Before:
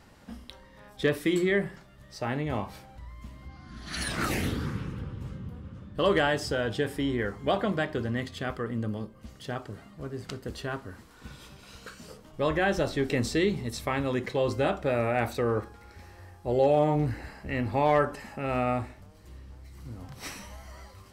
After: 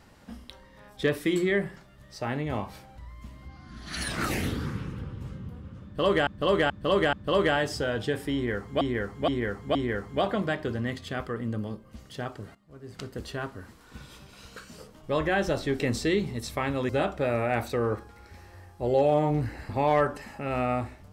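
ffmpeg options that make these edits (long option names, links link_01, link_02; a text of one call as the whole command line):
ffmpeg -i in.wav -filter_complex "[0:a]asplit=10[link_01][link_02][link_03][link_04][link_05][link_06][link_07][link_08][link_09][link_10];[link_01]atrim=end=6.272[link_11];[link_02]atrim=start=5.838:end=6.272[link_12];[link_03]atrim=start=5.838:end=6.272[link_13];[link_04]atrim=start=5.838:end=7.522[link_14];[link_05]atrim=start=7.048:end=7.522[link_15];[link_06]atrim=start=7.048:end=7.522[link_16];[link_07]atrim=start=7.048:end=9.85,asetpts=PTS-STARTPTS,afade=type=out:start_time=2.798:duration=0.004:curve=hsin:silence=0.158489[link_17];[link_08]atrim=start=9.85:end=14.192,asetpts=PTS-STARTPTS,afade=type=in:duration=0.5:curve=qua:silence=0.158489[link_18];[link_09]atrim=start=14.538:end=17.342[link_19];[link_10]atrim=start=17.668[link_20];[link_11][link_12]acrossfade=duration=0.004:curve1=hsin:curve2=hsin[link_21];[link_21][link_13]acrossfade=duration=0.004:curve1=hsin:curve2=hsin[link_22];[link_22][link_14]acrossfade=duration=0.004:curve1=hsin:curve2=hsin[link_23];[link_23][link_15]acrossfade=duration=0.004:curve1=hsin:curve2=hsin[link_24];[link_24][link_16]acrossfade=duration=0.004:curve1=hsin:curve2=hsin[link_25];[link_17][link_18]concat=n=2:v=0:a=1[link_26];[link_25][link_26]acrossfade=duration=0.004:curve1=hsin:curve2=hsin[link_27];[link_27][link_19]acrossfade=duration=0.004:curve1=hsin:curve2=hsin[link_28];[link_28][link_20]acrossfade=duration=0.004:curve1=hsin:curve2=hsin" out.wav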